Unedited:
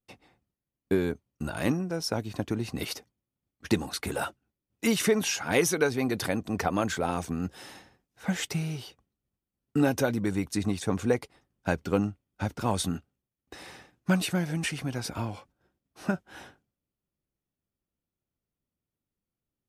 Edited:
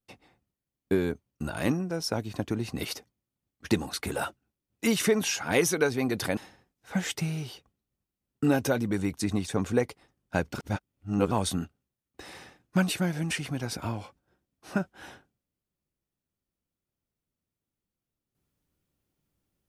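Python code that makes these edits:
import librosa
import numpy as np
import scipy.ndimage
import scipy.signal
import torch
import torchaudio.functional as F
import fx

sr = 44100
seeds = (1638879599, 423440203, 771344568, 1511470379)

y = fx.edit(x, sr, fx.cut(start_s=6.37, length_s=1.33),
    fx.reverse_span(start_s=11.87, length_s=0.77), tone=tone)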